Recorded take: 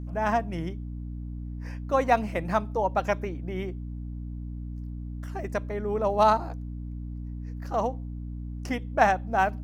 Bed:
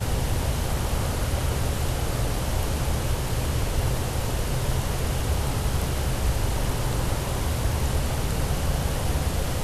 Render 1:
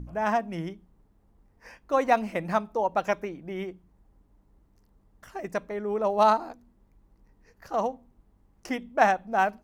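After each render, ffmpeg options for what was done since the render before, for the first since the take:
-af "bandreject=f=60:t=h:w=4,bandreject=f=120:t=h:w=4,bandreject=f=180:t=h:w=4,bandreject=f=240:t=h:w=4,bandreject=f=300:t=h:w=4"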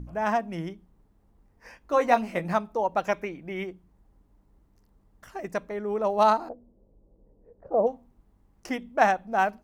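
-filter_complex "[0:a]asettb=1/sr,asplit=3[a][b][c];[a]atrim=end=1.794[d];[b]atrim=start=1.79:end=2.54,asetpts=PTS-STARTPTS,afade=t=in:d=0.004:c=qsin,afade=t=out:st=0.746:d=0.004:c=qsin,asplit=2[e][f];[f]adelay=17,volume=-6.5dB[g];[e][g]amix=inputs=2:normalize=0,atrim=end_sample=33075[h];[c]atrim=start=2.536[i];[d][h]acrossfade=d=0.004:c1=hsin:c2=qsin[j];[j][i]acrossfade=d=0.004:c1=qsin:c2=hsin,asettb=1/sr,asplit=3[k][l][m];[k]atrim=end=3.144[n];[l]atrim=start=3.14:end=3.64,asetpts=PTS-STARTPTS,afade=t=in:d=0.004:c=qsin,afade=t=out:st=0.496:d=0.004:c=qsin,equalizer=f=2.3k:w=2.2:g=7[o];[m]atrim=start=3.636[p];[n][o]acrossfade=d=0.004:c1=hsin:c2=qsin[q];[q][p]acrossfade=d=0.004:c1=qsin:c2=hsin,asplit=3[r][s][t];[r]afade=t=out:st=6.48:d=0.02[u];[s]lowpass=f=530:t=q:w=3.7,afade=t=in:st=6.48:d=0.02,afade=t=out:st=7.86:d=0.02[v];[t]afade=t=in:st=7.86:d=0.02[w];[u][v][w]amix=inputs=3:normalize=0"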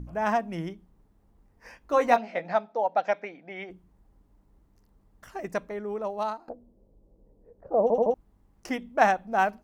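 -filter_complex "[0:a]asplit=3[a][b][c];[a]afade=t=out:st=2.16:d=0.02[d];[b]highpass=330,equalizer=f=360:t=q:w=4:g=-8,equalizer=f=720:t=q:w=4:g=6,equalizer=f=1.1k:t=q:w=4:g=-9,equalizer=f=2.8k:t=q:w=4:g=-5,lowpass=f=4.8k:w=0.5412,lowpass=f=4.8k:w=1.3066,afade=t=in:st=2.16:d=0.02,afade=t=out:st=3.69:d=0.02[e];[c]afade=t=in:st=3.69:d=0.02[f];[d][e][f]amix=inputs=3:normalize=0,asplit=6[g][h][i][j][k][l];[g]atrim=end=6.48,asetpts=PTS-STARTPTS,afade=t=out:st=5.57:d=0.91:silence=0.0749894[m];[h]atrim=start=6.48:end=7.902,asetpts=PTS-STARTPTS,afade=t=in:d=0.004:c=hsin:silence=0.0749894[n];[i]atrim=start=7.818:end=7.902[o];[j]atrim=start=7.818:end=7.902[p];[k]atrim=start=7.818:end=7.902[q];[l]atrim=start=8.138[r];[m][n]concat=n=2:v=0:a=1[s];[s][o]acrossfade=d=0.004:c1=hsin:c2=hsin[t];[t][p]acrossfade=d=0.004:c1=hsin:c2=hsin[u];[u][q]acrossfade=d=0.004:c1=hsin:c2=hsin[v];[v][r]acrossfade=d=0.004:c1=hsin:c2=hsin"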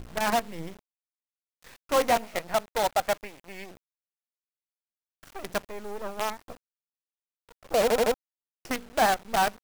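-af "asoftclip=type=tanh:threshold=-14dB,acrusher=bits=5:dc=4:mix=0:aa=0.000001"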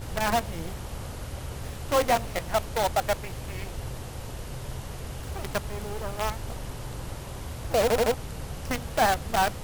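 -filter_complex "[1:a]volume=-11dB[a];[0:a][a]amix=inputs=2:normalize=0"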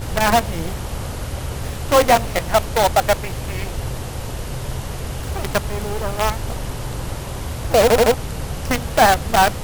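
-af "volume=9.5dB"

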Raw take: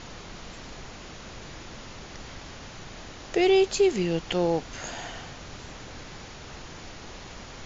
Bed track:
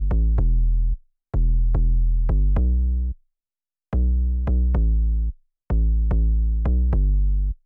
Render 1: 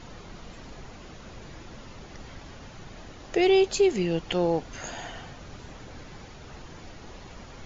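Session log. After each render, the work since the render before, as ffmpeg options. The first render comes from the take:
-af "afftdn=nr=7:nf=-43"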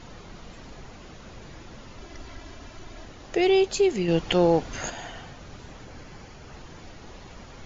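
-filter_complex "[0:a]asettb=1/sr,asplit=3[a][b][c];[a]atrim=end=1.984[d];[b]atrim=start=1.98:end=3.05,asetpts=PTS-STARTPTS,afade=t=in:d=0.004:c=qsin,afade=t=out:st=1.066:d=0.004:c=qsin,aecho=1:1:3:0.57,atrim=end_sample=47187[e];[c]atrim=start=3.046[f];[d][e]acrossfade=d=0.004:c1=hsin:c2=qsin[g];[g][f]acrossfade=d=0.004:c1=qsin:c2=hsin,asettb=1/sr,asplit=3[h][i][j];[h]atrim=end=4.084[k];[i]atrim=start=4.08:end=4.9,asetpts=PTS-STARTPTS,afade=t=in:d=0.004:c=qsin,afade=t=out:st=0.816:d=0.004:c=qsin,acontrast=28[l];[j]atrim=start=4.896[m];[k][l]acrossfade=d=0.004:c1=hsin:c2=qsin[n];[n][m]acrossfade=d=0.004:c1=qsin:c2=hsin,asettb=1/sr,asplit=3[o][p][q];[o]atrim=end=5.854[r];[p]atrim=start=5.85:end=6.54,asetpts=PTS-STARTPTS,afade=t=in:d=0.004:c=qsin,afade=t=out:st=0.686:d=0.004:c=qsin,bandreject=f=3.7k:w=10[s];[q]atrim=start=6.536[t];[r][s]acrossfade=d=0.004:c1=hsin:c2=qsin[u];[u][t]acrossfade=d=0.004:c1=qsin:c2=hsin"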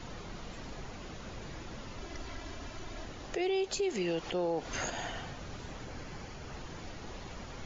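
-filter_complex "[0:a]acrossover=split=320|660[a][b][c];[a]acompressor=threshold=-39dB:ratio=4[d];[b]acompressor=threshold=-27dB:ratio=4[e];[c]acompressor=threshold=-33dB:ratio=4[f];[d][e][f]amix=inputs=3:normalize=0,alimiter=level_in=0.5dB:limit=-24dB:level=0:latency=1:release=106,volume=-0.5dB"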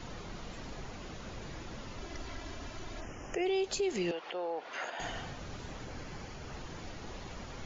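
-filter_complex "[0:a]asplit=3[a][b][c];[a]afade=t=out:st=3:d=0.02[d];[b]asuperstop=centerf=4000:order=8:qfactor=1.9,afade=t=in:st=3:d=0.02,afade=t=out:st=3.45:d=0.02[e];[c]afade=t=in:st=3.45:d=0.02[f];[d][e][f]amix=inputs=3:normalize=0,asettb=1/sr,asplit=3[g][h][i];[g]atrim=end=4.114[j];[h]atrim=start=4.11:end=5,asetpts=PTS-STARTPTS,afade=t=in:d=0.004:c=qsin,afade=t=out:st=0.886:d=0.004:c=qsin,highpass=560,lowpass=3k[k];[i]atrim=start=4.996[l];[j][k]acrossfade=d=0.004:c1=hsin:c2=qsin[m];[m][l]acrossfade=d=0.004:c1=qsin:c2=hsin"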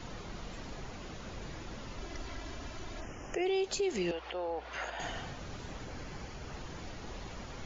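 -filter_complex "[1:a]volume=-35.5dB[a];[0:a][a]amix=inputs=2:normalize=0"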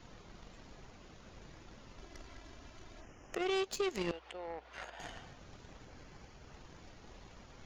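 -af "aeval=exprs='0.0631*(cos(1*acos(clip(val(0)/0.0631,-1,1)))-cos(1*PI/2))+0.0158*(cos(3*acos(clip(val(0)/0.0631,-1,1)))-cos(3*PI/2))':c=same"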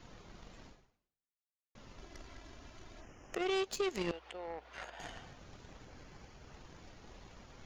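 -filter_complex "[0:a]asplit=2[a][b];[a]atrim=end=1.75,asetpts=PTS-STARTPTS,afade=t=out:st=0.67:d=1.08:c=exp[c];[b]atrim=start=1.75,asetpts=PTS-STARTPTS,afade=t=in:d=0.004:c=hsin[d];[c][d]concat=n=2:v=0:a=1"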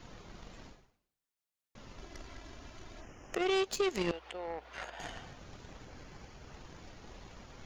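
-af "volume=3.5dB"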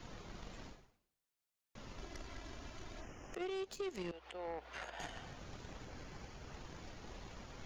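-filter_complex "[0:a]acrossover=split=470[a][b];[b]acompressor=threshold=-37dB:ratio=6[c];[a][c]amix=inputs=2:normalize=0,alimiter=level_in=9dB:limit=-24dB:level=0:latency=1:release=306,volume=-9dB"

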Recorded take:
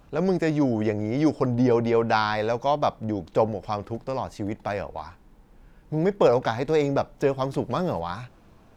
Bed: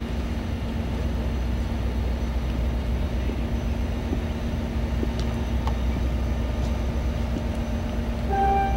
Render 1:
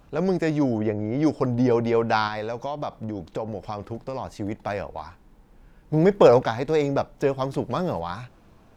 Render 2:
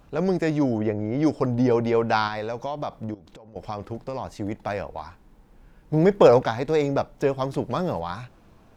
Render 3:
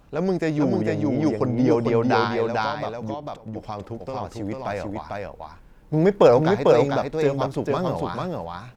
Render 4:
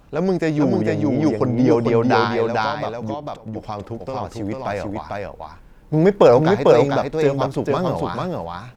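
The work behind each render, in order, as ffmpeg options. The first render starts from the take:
-filter_complex "[0:a]asettb=1/sr,asplit=3[a][b][c];[a]atrim=end=0.784[d];[b]atrim=start=0.78:end=1.23,asetpts=PTS-STARTPTS,afade=t=in:d=0.004:c=qsin,afade=t=out:st=0.446:d=0.004:c=qsin,lowpass=f=1.7k:p=1[e];[c]atrim=start=1.226[f];[d][e]acrossfade=d=0.004:c1=hsin:c2=qsin[g];[g][f]acrossfade=d=0.004:c1=qsin:c2=hsin,asettb=1/sr,asplit=3[h][i][j];[h]atrim=end=2.274[k];[i]atrim=start=2.27:end=4.4,asetpts=PTS-STARTPTS,afade=t=in:d=0.004:c=qsin,afade=t=out:st=2.126:d=0.004:c=qsin,acompressor=threshold=-25dB:ratio=6:attack=3.2:release=140:knee=1:detection=peak[l];[j]atrim=start=4.396[m];[k][l]acrossfade=d=0.004:c1=hsin:c2=qsin[n];[n][m]acrossfade=d=0.004:c1=qsin:c2=hsin,asettb=1/sr,asplit=3[o][p][q];[o]atrim=end=5.934[r];[p]atrim=start=5.93:end=6.43,asetpts=PTS-STARTPTS,afade=t=in:d=0.004:c=qsin,afade=t=out:st=0.496:d=0.004:c=qsin,acontrast=25[s];[q]atrim=start=6.426[t];[r][s]acrossfade=d=0.004:c1=hsin:c2=qsin[u];[u][t]acrossfade=d=0.004:c1=qsin:c2=hsin"
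-filter_complex "[0:a]asettb=1/sr,asplit=3[a][b][c];[a]atrim=end=3.144[d];[b]atrim=start=3.14:end=3.56,asetpts=PTS-STARTPTS,afade=t=in:d=0.004:c=qsin,afade=t=out:st=0.416:d=0.004:c=qsin,acompressor=threshold=-42dB:ratio=20:attack=3.2:release=140:knee=1:detection=peak[e];[c]atrim=start=3.556[f];[d][e]acrossfade=d=0.004:c1=hsin:c2=qsin[g];[g][f]acrossfade=d=0.004:c1=qsin:c2=hsin"
-af "aecho=1:1:447:0.708"
-af "volume=3.5dB,alimiter=limit=-2dB:level=0:latency=1"

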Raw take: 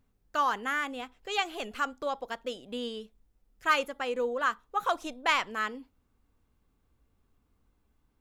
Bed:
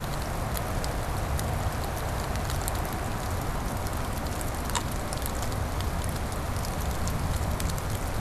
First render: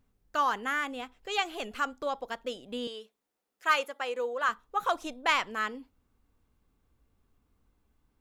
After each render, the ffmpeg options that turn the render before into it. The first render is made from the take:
-filter_complex "[0:a]asettb=1/sr,asplit=3[a][b][c];[a]atrim=end=2.874[d];[b]atrim=start=2.87:end=4.49,asetpts=PTS-STARTPTS,afade=t=in:d=0.004:c=qsin,afade=t=out:st=1.616:d=0.004:c=qsin,highpass=430[e];[c]atrim=start=4.486[f];[d][e]acrossfade=d=0.004:c1=hsin:c2=qsin[g];[g][f]acrossfade=d=0.004:c1=qsin:c2=hsin"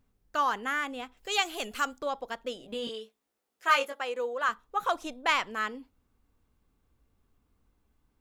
-filter_complex "[0:a]asettb=1/sr,asplit=3[a][b][c];[a]atrim=end=1.174[d];[b]atrim=start=1.17:end=1.99,asetpts=PTS-STARTPTS,afade=t=in:d=0.004:c=qsin,afade=t=out:st=0.816:d=0.004:c=qsin,highshelf=f=4.3k:g=11[e];[c]atrim=start=1.986[f];[d][e]acrossfade=d=0.004:c1=hsin:c2=qsin[g];[g][f]acrossfade=d=0.004:c1=qsin:c2=hsin,asettb=1/sr,asplit=3[h][i][j];[h]atrim=end=2.584[k];[i]atrim=start=2.58:end=4.01,asetpts=PTS-STARTPTS,afade=t=in:d=0.004:c=qsin,afade=t=out:st=1.426:d=0.004:c=qsin,asplit=2[l][m];[m]adelay=18,volume=-3dB[n];[l][n]amix=inputs=2:normalize=0,atrim=end_sample=63063[o];[j]atrim=start=4.006[p];[k][o]acrossfade=d=0.004:c1=hsin:c2=qsin[q];[q][p]acrossfade=d=0.004:c1=qsin:c2=hsin"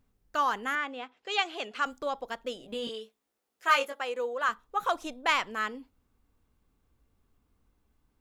-filter_complex "[0:a]asettb=1/sr,asplit=3[a][b][c];[a]atrim=end=0.754[d];[b]atrim=start=0.75:end=1.86,asetpts=PTS-STARTPTS,afade=t=in:d=0.004:c=qsin,afade=t=out:st=1.106:d=0.004:c=qsin,highpass=280,lowpass=4.1k[e];[c]atrim=start=1.856[f];[d][e]acrossfade=d=0.004:c1=hsin:c2=qsin[g];[g][f]acrossfade=d=0.004:c1=qsin:c2=hsin"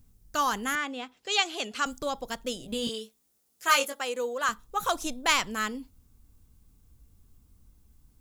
-af "bass=f=250:g=13,treble=f=4k:g=15"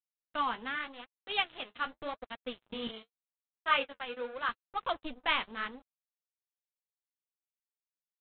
-af "aresample=8000,aeval=exprs='sgn(val(0))*max(abs(val(0))-0.0141,0)':c=same,aresample=44100,flanger=delay=3.3:depth=9.8:regen=-39:speed=0.85:shape=sinusoidal"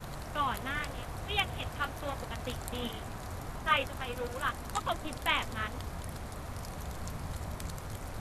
-filter_complex "[1:a]volume=-10.5dB[a];[0:a][a]amix=inputs=2:normalize=0"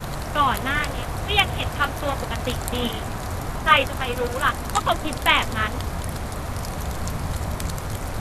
-af "volume=12dB,alimiter=limit=-3dB:level=0:latency=1"

